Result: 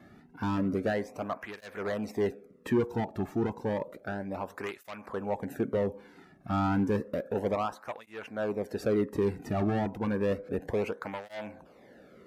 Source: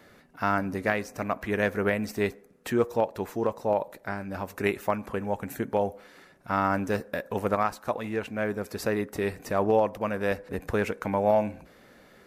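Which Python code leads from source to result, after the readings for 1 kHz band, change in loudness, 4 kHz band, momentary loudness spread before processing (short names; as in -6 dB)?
-7.0 dB, -3.5 dB, -4.5 dB, 8 LU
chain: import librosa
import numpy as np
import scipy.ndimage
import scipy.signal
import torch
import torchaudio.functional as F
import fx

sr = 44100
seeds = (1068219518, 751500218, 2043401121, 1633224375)

y = np.clip(10.0 ** (24.5 / 20.0) * x, -1.0, 1.0) / 10.0 ** (24.5 / 20.0)
y = fx.tilt_eq(y, sr, slope=-2.5)
y = fx.flanger_cancel(y, sr, hz=0.31, depth_ms=2.1)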